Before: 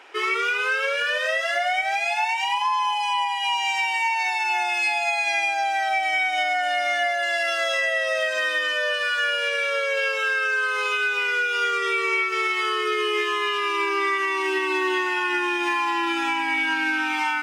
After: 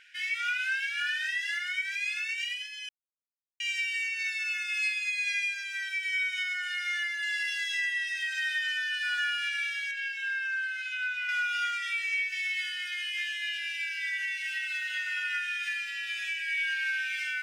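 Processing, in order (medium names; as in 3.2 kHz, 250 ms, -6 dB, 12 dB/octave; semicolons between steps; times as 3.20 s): 9.91–11.29 s: tilt EQ -3 dB/octave; brick-wall FIR high-pass 1.4 kHz; 2.89–3.60 s: mute; trim -6 dB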